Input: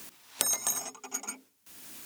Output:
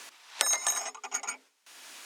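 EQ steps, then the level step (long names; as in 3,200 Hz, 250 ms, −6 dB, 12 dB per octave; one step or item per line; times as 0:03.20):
high-pass filter 670 Hz 12 dB per octave
dynamic equaliser 1,900 Hz, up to +5 dB, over −60 dBFS, Q 5.3
high-frequency loss of the air 63 metres
+6.5 dB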